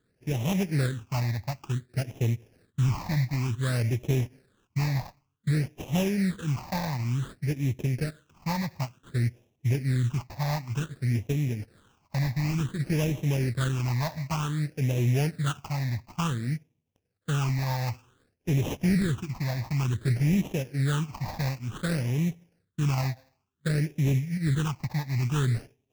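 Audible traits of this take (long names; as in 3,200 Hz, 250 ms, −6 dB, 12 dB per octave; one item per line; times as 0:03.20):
aliases and images of a low sample rate 2,100 Hz, jitter 20%
phaser sweep stages 8, 0.55 Hz, lowest notch 400–1,400 Hz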